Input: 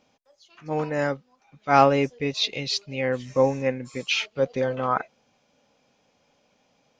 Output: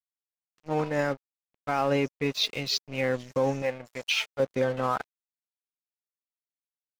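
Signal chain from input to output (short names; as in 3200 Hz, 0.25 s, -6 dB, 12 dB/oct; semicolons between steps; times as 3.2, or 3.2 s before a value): limiter -14.5 dBFS, peak gain reduction 11 dB; crossover distortion -41 dBFS; 3.62–4.4 resonant low shelf 460 Hz -7 dB, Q 1.5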